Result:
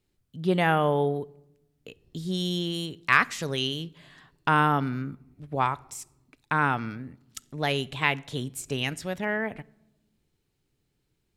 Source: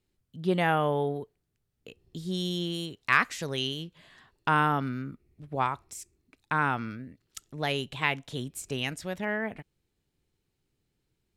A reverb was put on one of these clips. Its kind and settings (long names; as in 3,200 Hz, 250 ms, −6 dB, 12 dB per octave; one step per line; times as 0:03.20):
rectangular room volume 3,500 cubic metres, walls furnished, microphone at 0.34 metres
level +2.5 dB